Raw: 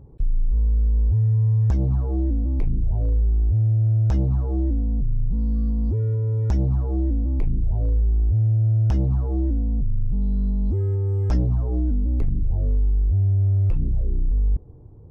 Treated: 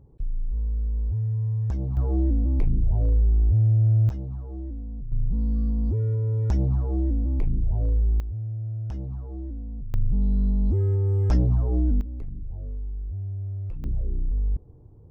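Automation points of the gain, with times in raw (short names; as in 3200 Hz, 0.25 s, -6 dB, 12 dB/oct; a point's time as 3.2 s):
-7 dB
from 1.97 s 0 dB
from 4.09 s -12 dB
from 5.12 s -2 dB
from 8.2 s -12 dB
from 9.94 s 0 dB
from 12.01 s -12.5 dB
from 13.84 s -4.5 dB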